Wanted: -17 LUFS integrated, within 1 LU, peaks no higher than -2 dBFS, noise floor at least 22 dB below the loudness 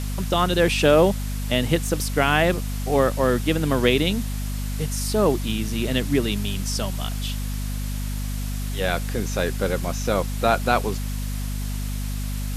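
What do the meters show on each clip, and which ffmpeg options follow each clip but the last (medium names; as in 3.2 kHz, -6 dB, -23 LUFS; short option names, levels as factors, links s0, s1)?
hum 50 Hz; highest harmonic 250 Hz; hum level -25 dBFS; noise floor -27 dBFS; noise floor target -46 dBFS; loudness -23.5 LUFS; peak level -3.0 dBFS; loudness target -17.0 LUFS
-> -af "bandreject=f=50:t=h:w=6,bandreject=f=100:t=h:w=6,bandreject=f=150:t=h:w=6,bandreject=f=200:t=h:w=6,bandreject=f=250:t=h:w=6"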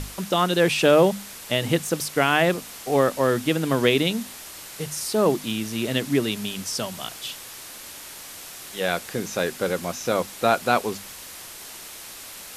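hum not found; noise floor -40 dBFS; noise floor target -46 dBFS
-> -af "afftdn=nr=6:nf=-40"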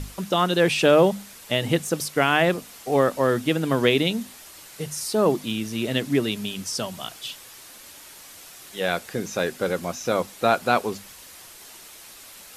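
noise floor -45 dBFS; noise floor target -46 dBFS
-> -af "afftdn=nr=6:nf=-45"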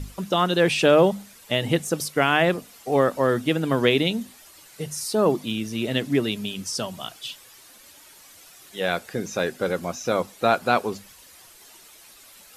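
noise floor -50 dBFS; loudness -23.5 LUFS; peak level -4.0 dBFS; loudness target -17.0 LUFS
-> -af "volume=2.11,alimiter=limit=0.794:level=0:latency=1"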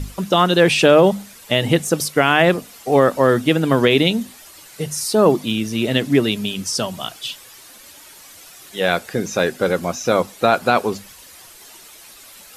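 loudness -17.5 LUFS; peak level -2.0 dBFS; noise floor -43 dBFS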